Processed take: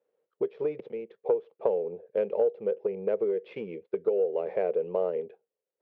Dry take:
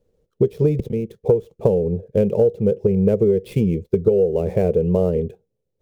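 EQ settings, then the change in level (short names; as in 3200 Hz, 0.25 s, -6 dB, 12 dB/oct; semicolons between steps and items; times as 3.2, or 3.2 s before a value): BPF 540–2000 Hz; air absorption 240 m; tilt +2.5 dB/oct; -1.0 dB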